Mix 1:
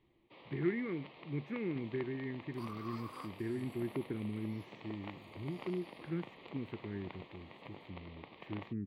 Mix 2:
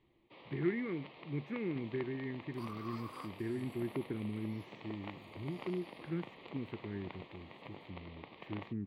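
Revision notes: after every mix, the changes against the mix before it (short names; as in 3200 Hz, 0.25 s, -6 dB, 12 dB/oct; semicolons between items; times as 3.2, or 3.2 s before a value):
first sound: send +11.5 dB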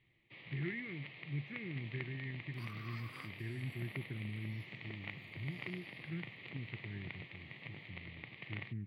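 speech -6.5 dB; master: add ten-band EQ 125 Hz +11 dB, 250 Hz -4 dB, 500 Hz -6 dB, 1000 Hz -11 dB, 2000 Hz +11 dB, 8000 Hz -5 dB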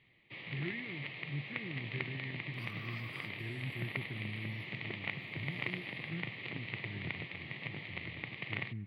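first sound +7.5 dB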